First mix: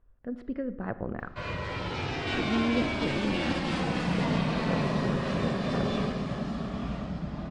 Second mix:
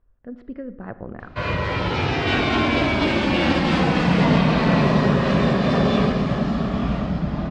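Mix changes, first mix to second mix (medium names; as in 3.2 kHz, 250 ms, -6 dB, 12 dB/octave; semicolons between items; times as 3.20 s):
background +11.0 dB; master: add distance through air 79 m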